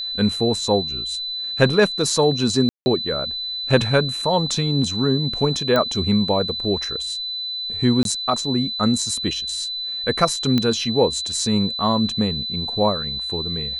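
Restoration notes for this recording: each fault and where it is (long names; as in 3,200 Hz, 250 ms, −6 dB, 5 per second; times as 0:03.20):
whistle 4,000 Hz −25 dBFS
0:02.69–0:02.86: drop-out 170 ms
0:05.76: click −8 dBFS
0:08.03–0:08.05: drop-out 22 ms
0:10.58: click −8 dBFS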